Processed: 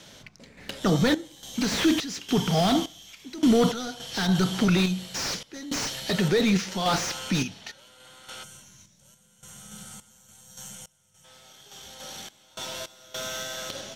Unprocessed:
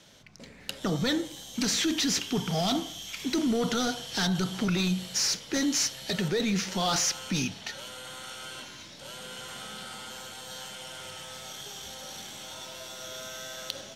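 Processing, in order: time-frequency box 8.44–11.24 s, 230–5500 Hz -13 dB; random-step tremolo, depth 95%; slew-rate limiter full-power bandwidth 69 Hz; trim +7.5 dB

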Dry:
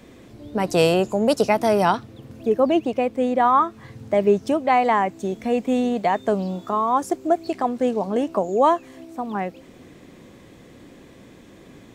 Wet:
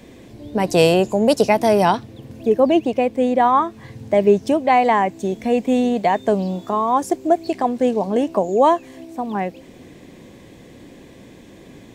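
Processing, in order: peaking EQ 1.3 kHz -8.5 dB 0.32 oct; trim +3.5 dB

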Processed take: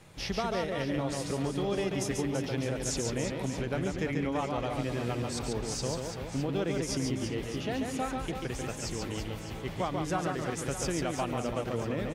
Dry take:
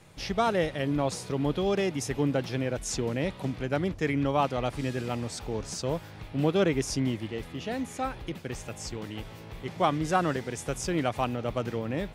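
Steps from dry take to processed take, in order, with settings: compression, threshold -29 dBFS, peak gain reduction 10 dB; on a send: reverse bouncing-ball echo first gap 140 ms, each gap 1.4×, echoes 5

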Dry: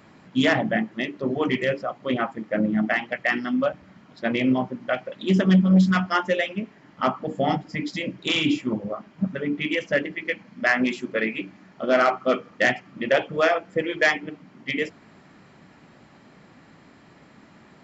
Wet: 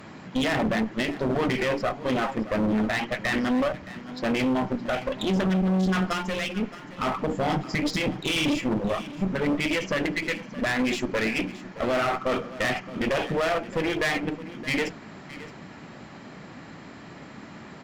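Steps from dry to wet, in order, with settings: peak limiter -21 dBFS, peak gain reduction 11.5 dB; one-sided clip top -38 dBFS, bottom -24.5 dBFS; 6.13–6.60 s: peaking EQ 640 Hz -6 dB 2.9 oct; delay 619 ms -16 dB; trim +8 dB

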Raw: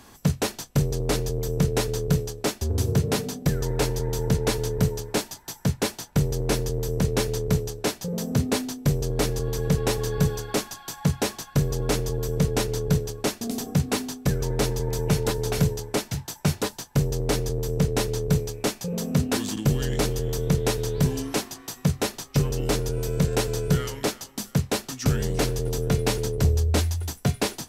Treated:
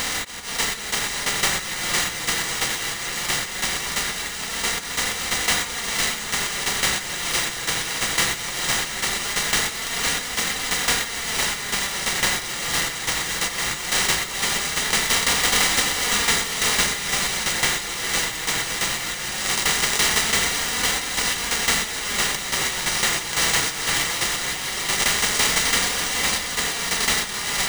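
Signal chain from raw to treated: spectral levelling over time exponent 0.2; hum notches 60/120/180/240/300 Hz; comb of notches 940 Hz; level rider gain up to 4 dB; differentiator; slow attack 261 ms; treble shelf 5.3 kHz +11.5 dB; static phaser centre 790 Hz, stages 8; on a send: echo that smears into a reverb 515 ms, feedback 49%, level -4.5 dB; on the sum: careless resampling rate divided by 3×, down none, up hold; flange 0.19 Hz, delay 3.8 ms, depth 2.5 ms, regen -44%; trim +3 dB

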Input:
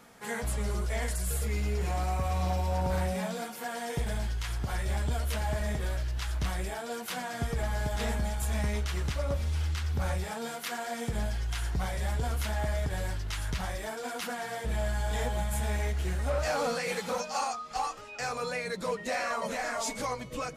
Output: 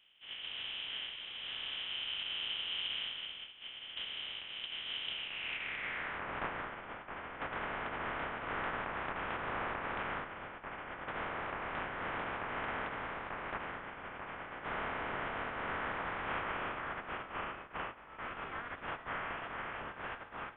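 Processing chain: spectral contrast reduction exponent 0.25; band-pass sweep 750 Hz -> 2.7 kHz, 5.08–6.28 s; frequency inversion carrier 3.8 kHz; trim +1 dB

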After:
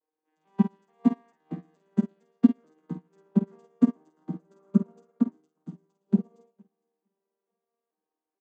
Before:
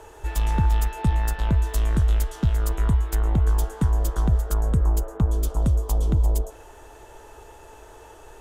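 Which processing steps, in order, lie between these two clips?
vocoder on a broken chord major triad, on D#3, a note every 439 ms; in parallel at -4 dB: crossover distortion -48.5 dBFS; 4.61–5.14 s: on the sum: spectral replace 950–2300 Hz; 5.18–6.05 s: peaking EQ 500 Hz -13.5 dB 0.85 oct; doubling 49 ms -4.5 dB; feedback delay 460 ms, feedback 37%, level -11.5 dB; on a send at -12 dB: reverberation RT60 1.9 s, pre-delay 3 ms; on the sum: dynamic bell 270 Hz, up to +5 dB, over -31 dBFS, Q 1.2; brick-wall FIR high-pass 170 Hz; upward expansion 2.5:1, over -39 dBFS

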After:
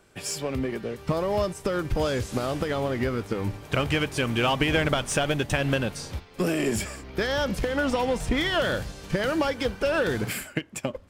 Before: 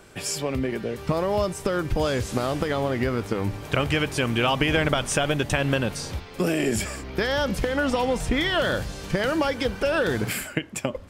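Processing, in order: in parallel at -4 dB: overload inside the chain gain 26 dB; on the sum: upward expansion 1.5:1, over -39 dBFS; trim -2.5 dB

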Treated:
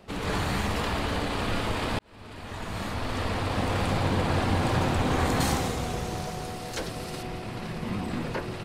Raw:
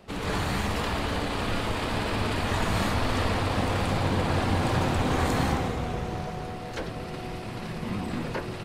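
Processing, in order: 1.99–3.84 s: fade in; 5.40–7.23 s: tone controls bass -1 dB, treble +11 dB

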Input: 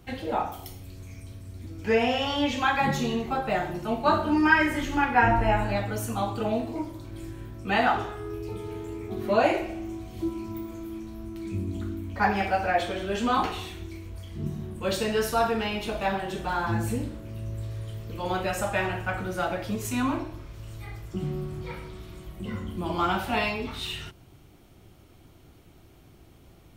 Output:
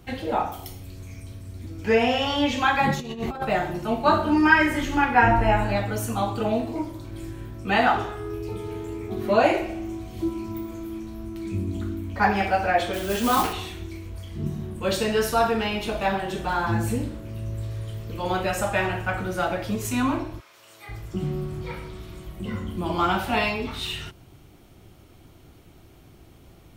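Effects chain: 2.94–3.45 s: compressor with a negative ratio -32 dBFS, ratio -0.5; 12.93–13.53 s: modulation noise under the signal 12 dB; 20.39–20.88 s: high-pass 1 kHz -> 450 Hz 12 dB/octave; trim +3 dB

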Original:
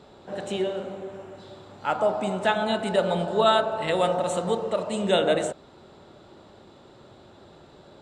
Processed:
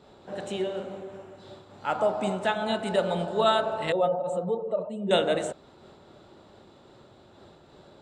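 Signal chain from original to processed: 3.92–5.11 s: spectral contrast enhancement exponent 1.7; random flutter of the level, depth 55%

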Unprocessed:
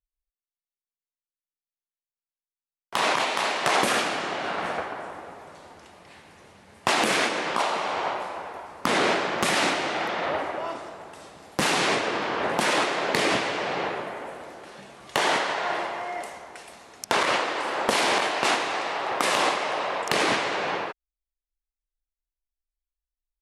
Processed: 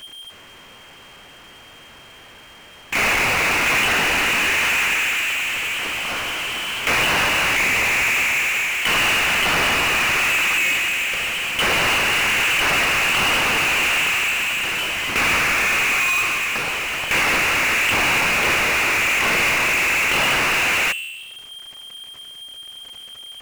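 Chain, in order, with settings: de-hum 73.26 Hz, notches 8; in parallel at -2 dB: compressor with a negative ratio -32 dBFS; on the sum: frequency inversion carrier 3.2 kHz; power-law waveshaper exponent 0.35; trim -6.5 dB

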